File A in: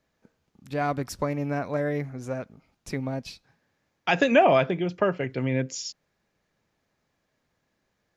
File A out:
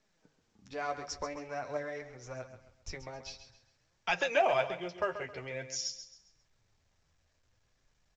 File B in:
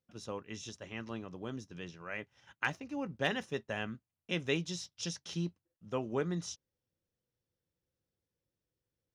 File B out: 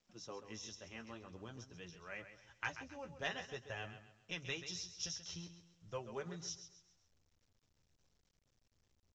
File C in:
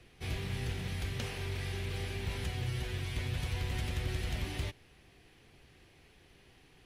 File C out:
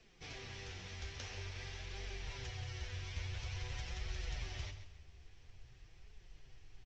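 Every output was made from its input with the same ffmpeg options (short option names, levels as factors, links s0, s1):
-filter_complex "[0:a]acrossover=split=380|1900[s0][s1][s2];[s0]acompressor=threshold=0.00708:ratio=6[s3];[s3][s1][s2]amix=inputs=3:normalize=0,asubboost=boost=11.5:cutoff=72,flanger=delay=4.4:depth=8.9:regen=23:speed=0.49:shape=triangular,equalizer=f=5600:w=3.9:g=8,bandreject=f=50:t=h:w=6,bandreject=f=100:t=h:w=6,bandreject=f=150:t=h:w=6,asplit=2[s4][s5];[s5]aecho=0:1:134|268|402|536:0.282|0.093|0.0307|0.0101[s6];[s4][s6]amix=inputs=2:normalize=0,volume=0.668" -ar 16000 -c:a pcm_mulaw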